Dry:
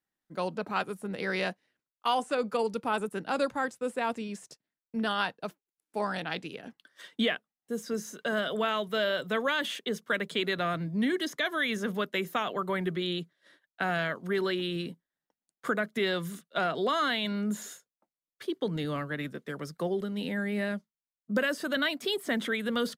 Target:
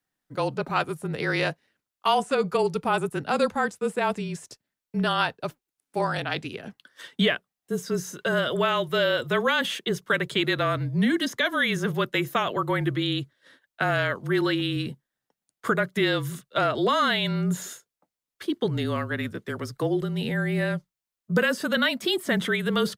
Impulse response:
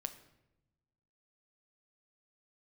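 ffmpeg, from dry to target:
-af "afreqshift=-32,volume=5.5dB"

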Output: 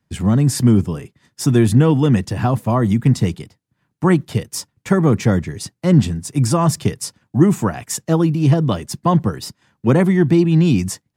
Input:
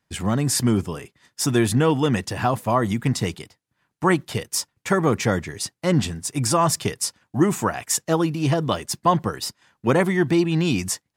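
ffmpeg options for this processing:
-filter_complex "[0:a]equalizer=f=200:w=0.51:g=8,acrossover=split=160[a][b];[a]acontrast=54[c];[c][b]amix=inputs=2:normalize=0,volume=-2dB"

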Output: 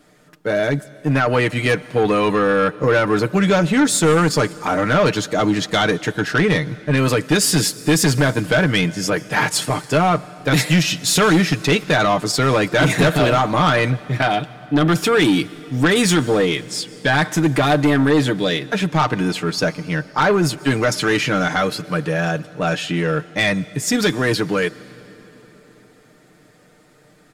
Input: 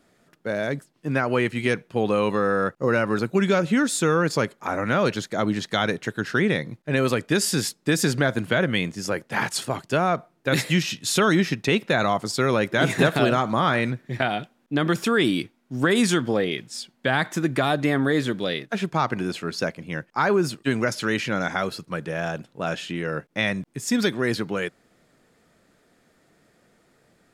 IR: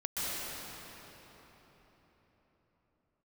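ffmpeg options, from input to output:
-filter_complex "[0:a]aecho=1:1:6.6:0.6,asoftclip=type=tanh:threshold=-16.5dB,asplit=2[a][b];[1:a]atrim=start_sample=2205,highshelf=f=4.5k:g=9[c];[b][c]afir=irnorm=-1:irlink=0,volume=-27.5dB[d];[a][d]amix=inputs=2:normalize=0,volume=7dB"

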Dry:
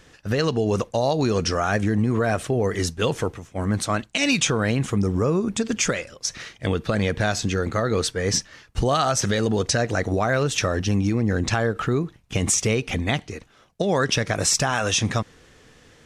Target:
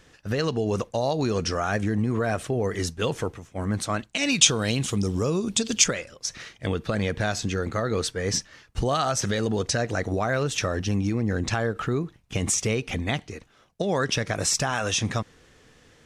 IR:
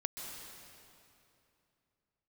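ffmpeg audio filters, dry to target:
-filter_complex "[0:a]asettb=1/sr,asplit=3[a][b][c];[a]atrim=end=4.414[d];[b]atrim=start=4.41:end=5.84,asetpts=PTS-STARTPTS,afade=t=in:d=0.004:c=qsin,afade=t=out:st=1.426:d=0.004:c=qsin,highshelf=f=2.5k:t=q:w=1.5:g=8.5[e];[c]atrim=start=5.836[f];[d][e]acrossfade=d=0.004:c1=hsin:c2=qsin[g];[g][f]acrossfade=d=0.004:c1=qsin:c2=hsin,volume=-3.5dB"

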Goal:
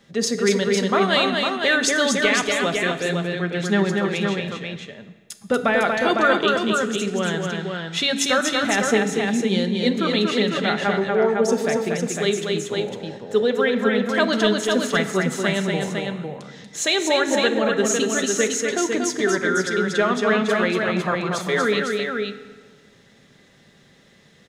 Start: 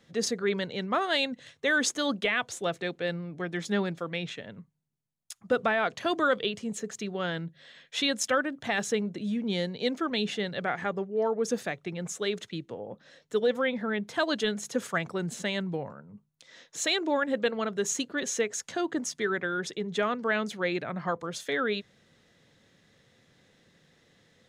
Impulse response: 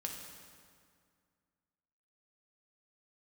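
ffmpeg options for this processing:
-filter_complex "[0:a]aecho=1:1:237|504:0.631|0.562,asplit=2[a][b];[1:a]atrim=start_sample=2205,asetrate=66150,aresample=44100,adelay=5[c];[b][c]afir=irnorm=-1:irlink=0,volume=-2.5dB[d];[a][d]amix=inputs=2:normalize=0,volume=6dB"

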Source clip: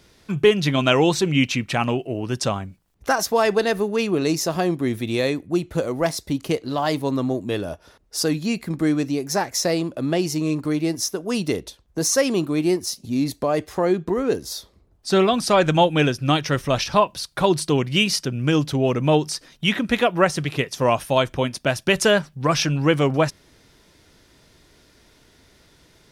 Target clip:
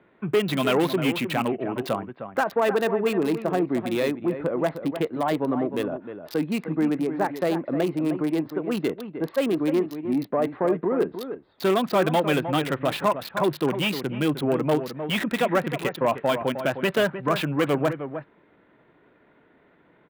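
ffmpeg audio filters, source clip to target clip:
-filter_complex "[0:a]lowpass=f=3.9k:t=q:w=2.9,aresample=11025,asoftclip=type=tanh:threshold=-14.5dB,aresample=44100,acrossover=split=150 2600:gain=0.0794 1 0.126[a][b][c];[a][b][c]amix=inputs=3:normalize=0,atempo=1.3,acrossover=split=2300[d][e];[d]aecho=1:1:308:0.335[f];[e]acrusher=bits=5:mix=0:aa=0.000001[g];[f][g]amix=inputs=2:normalize=0"

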